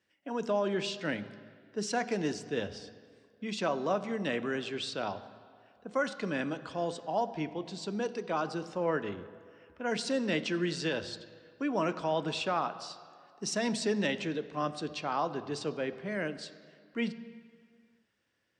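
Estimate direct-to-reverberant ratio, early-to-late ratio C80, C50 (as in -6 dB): 11.5 dB, 15.0 dB, 14.0 dB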